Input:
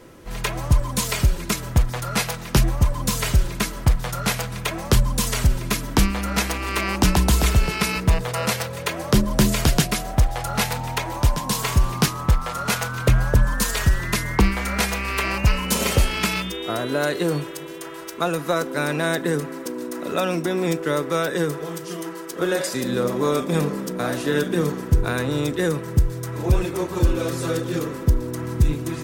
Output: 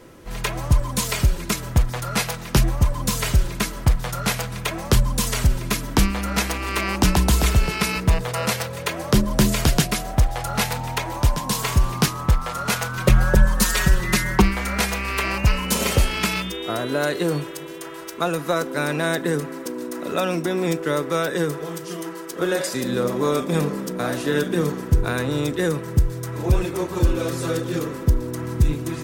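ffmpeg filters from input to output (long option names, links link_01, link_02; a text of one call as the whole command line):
ffmpeg -i in.wav -filter_complex "[0:a]asettb=1/sr,asplit=3[link_01][link_02][link_03];[link_01]atrim=end=12.974[link_04];[link_02]atrim=start=12.97:end=14.42,asetpts=PTS-STARTPTS,afade=type=in:duration=0.004:curve=qsin,afade=type=out:start_time=1.446:duration=0.004:curve=qsin,aecho=1:1:5.4:0.96,atrim=end_sample=63945[link_05];[link_03]atrim=start=14.416[link_06];[link_04][link_05]acrossfade=duration=0.004:curve1=hsin:curve2=qsin[link_07];[link_07][link_06]acrossfade=duration=0.004:curve1=qsin:curve2=hsin" out.wav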